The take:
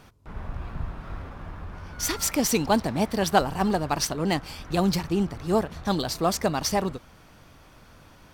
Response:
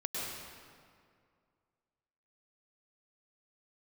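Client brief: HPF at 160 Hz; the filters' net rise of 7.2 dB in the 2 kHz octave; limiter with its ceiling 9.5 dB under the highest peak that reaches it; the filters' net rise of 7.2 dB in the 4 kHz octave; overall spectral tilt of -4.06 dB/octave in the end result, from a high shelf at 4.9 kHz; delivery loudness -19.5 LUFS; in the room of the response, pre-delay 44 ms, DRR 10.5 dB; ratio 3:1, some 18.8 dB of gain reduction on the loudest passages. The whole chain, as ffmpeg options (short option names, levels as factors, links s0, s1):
-filter_complex "[0:a]highpass=160,equalizer=f=2000:t=o:g=7.5,equalizer=f=4000:t=o:g=5.5,highshelf=f=4900:g=3.5,acompressor=threshold=0.01:ratio=3,alimiter=level_in=1.88:limit=0.0631:level=0:latency=1,volume=0.531,asplit=2[s0][s1];[1:a]atrim=start_sample=2205,adelay=44[s2];[s1][s2]afir=irnorm=-1:irlink=0,volume=0.188[s3];[s0][s3]amix=inputs=2:normalize=0,volume=12.6"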